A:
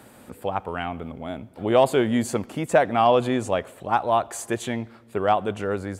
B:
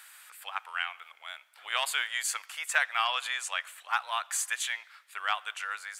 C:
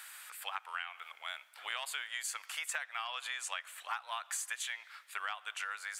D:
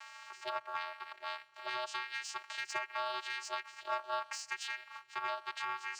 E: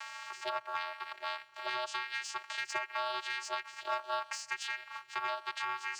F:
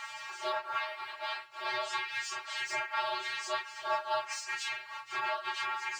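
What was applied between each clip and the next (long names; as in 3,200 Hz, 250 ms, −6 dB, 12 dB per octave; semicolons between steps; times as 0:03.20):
high-pass filter 1,400 Hz 24 dB per octave; level +3.5 dB
downward compressor 12 to 1, threshold −37 dBFS, peak gain reduction 17 dB; level +2 dB
channel vocoder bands 8, square 125 Hz; leveller curve on the samples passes 1; level −1 dB
multiband upward and downward compressor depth 40%; level +2 dB
random phases in long frames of 100 ms; level +2.5 dB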